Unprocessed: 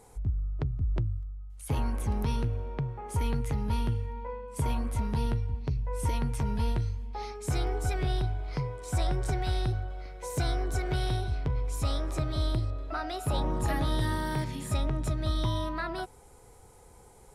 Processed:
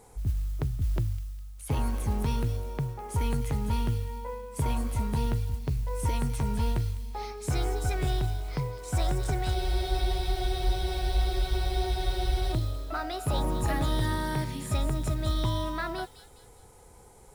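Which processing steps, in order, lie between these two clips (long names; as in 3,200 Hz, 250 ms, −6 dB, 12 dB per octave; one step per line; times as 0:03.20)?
noise that follows the level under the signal 28 dB
delay with a high-pass on its return 204 ms, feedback 43%, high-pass 3,600 Hz, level −7.5 dB
frozen spectrum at 0:09.57, 2.96 s
level +1 dB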